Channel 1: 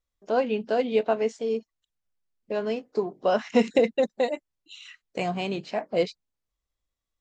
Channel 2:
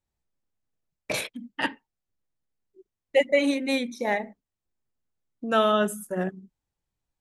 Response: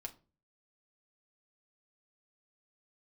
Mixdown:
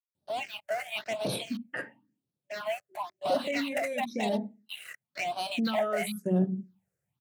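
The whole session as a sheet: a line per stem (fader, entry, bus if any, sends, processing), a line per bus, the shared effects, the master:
-13.5 dB, 0.00 s, no send, FFT band-pass 580–4700 Hz; waveshaping leveller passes 5
-1.0 dB, 0.15 s, send -6.5 dB, bass shelf 390 Hz +10 dB; peak limiter -19 dBFS, peak gain reduction 12 dB; auto duck -10 dB, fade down 1.95 s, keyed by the first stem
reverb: on, RT60 0.35 s, pre-delay 4 ms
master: high-pass 110 Hz 24 dB/octave; level rider gain up to 3 dB; phase shifter stages 6, 0.97 Hz, lowest notch 240–2100 Hz

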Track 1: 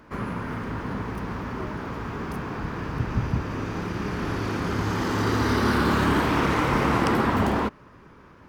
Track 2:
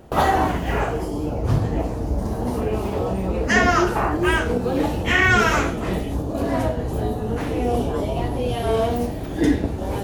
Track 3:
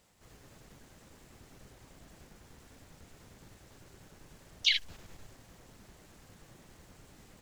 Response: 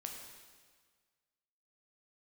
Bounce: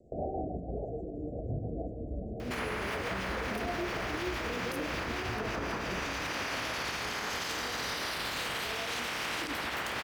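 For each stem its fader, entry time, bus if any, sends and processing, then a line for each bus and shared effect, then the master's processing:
0.0 dB, 2.40 s, send -5.5 dB, spectral peaks clipped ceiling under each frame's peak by 24 dB; high-pass 99 Hz 24 dB/octave; compression, threshold -33 dBFS, peak gain reduction 14.5 dB
6.05 s -8.5 dB -> 6.44 s -17.5 dB, 0.00 s, send -7.5 dB, steep low-pass 730 Hz 96 dB/octave; rotary cabinet horn 7 Hz
-17.0 dB, 0.00 s, no send, spectral gate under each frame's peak -20 dB strong; band-pass filter 7 kHz, Q 2.1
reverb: on, RT60 1.6 s, pre-delay 7 ms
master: bass shelf 450 Hz -7 dB; peak limiter -25.5 dBFS, peak gain reduction 10.5 dB

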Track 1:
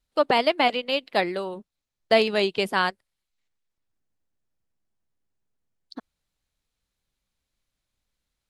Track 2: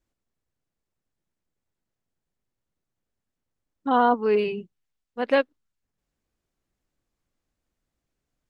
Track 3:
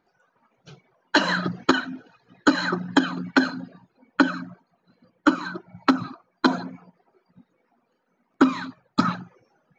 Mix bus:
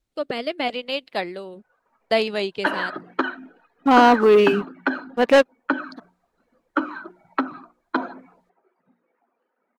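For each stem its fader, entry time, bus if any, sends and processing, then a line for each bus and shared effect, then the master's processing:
-1.0 dB, 0.00 s, no send, rotary cabinet horn 0.8 Hz
+2.5 dB, 0.00 s, no send, waveshaping leveller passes 2
-1.5 dB, 1.50 s, no send, three-band isolator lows -23 dB, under 250 Hz, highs -24 dB, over 2.8 kHz; hum notches 60/120/180/240/300/360 Hz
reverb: none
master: none

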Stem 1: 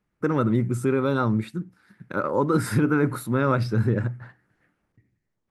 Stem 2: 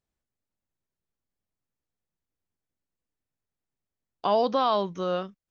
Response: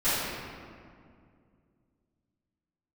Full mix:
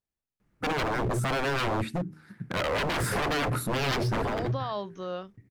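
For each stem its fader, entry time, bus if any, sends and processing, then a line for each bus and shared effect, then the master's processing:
+2.5 dB, 0.40 s, no send, bass shelf 380 Hz +6 dB; wavefolder -23.5 dBFS
-7.0 dB, 0.00 s, no send, none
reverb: none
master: de-hum 78.27 Hz, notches 5; peak limiter -22 dBFS, peak gain reduction 7.5 dB

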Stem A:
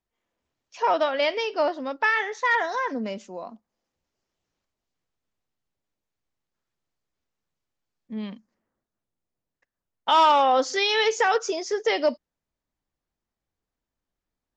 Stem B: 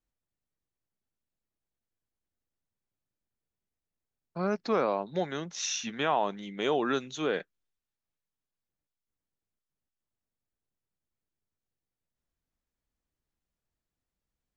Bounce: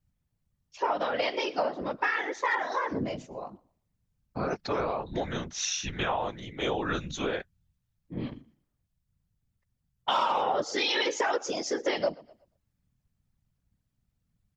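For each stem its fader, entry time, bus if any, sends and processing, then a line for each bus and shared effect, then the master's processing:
+2.0 dB, 0.00 s, no send, echo send -23 dB, hum notches 50/100/150/200 Hz; three bands expanded up and down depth 40%
+2.5 dB, 0.00 s, no send, no echo send, resonant low shelf 150 Hz +11.5 dB, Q 3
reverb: none
echo: feedback delay 119 ms, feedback 22%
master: whisper effect; compression 4:1, threshold -26 dBFS, peak gain reduction 14.5 dB

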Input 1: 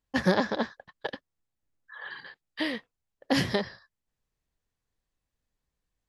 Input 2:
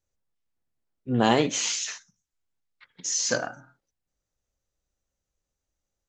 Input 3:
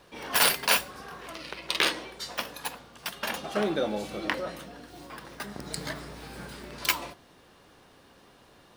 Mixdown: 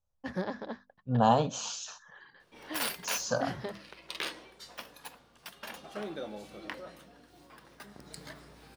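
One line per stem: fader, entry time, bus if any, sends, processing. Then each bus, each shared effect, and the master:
-10.0 dB, 0.10 s, no send, treble shelf 2.2 kHz -8.5 dB; hum notches 50/100/150/200/250 Hz
+1.5 dB, 0.00 s, no send, low-pass 1.8 kHz 6 dB/octave; static phaser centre 850 Hz, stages 4
-11.5 dB, 2.40 s, no send, none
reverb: none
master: none

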